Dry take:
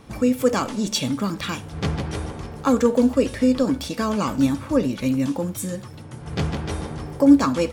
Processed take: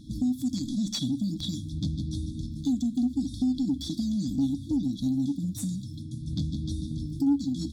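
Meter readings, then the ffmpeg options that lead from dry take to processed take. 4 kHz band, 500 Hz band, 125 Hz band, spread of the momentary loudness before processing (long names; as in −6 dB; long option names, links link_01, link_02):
−6.0 dB, below −25 dB, −3.5 dB, 13 LU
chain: -filter_complex "[0:a]afftfilt=real='re*(1-between(b*sr/4096,330,3300))':imag='im*(1-between(b*sr/4096,330,3300))':win_size=4096:overlap=0.75,lowshelf=frequency=260:gain=7.5,acompressor=threshold=-25dB:ratio=2.5,asplit=2[link_01][link_02];[link_02]highpass=frequency=720:poles=1,volume=12dB,asoftclip=type=tanh:threshold=-14dB[link_03];[link_01][link_03]amix=inputs=2:normalize=0,lowpass=frequency=2200:poles=1,volume=-6dB,volume=-1dB"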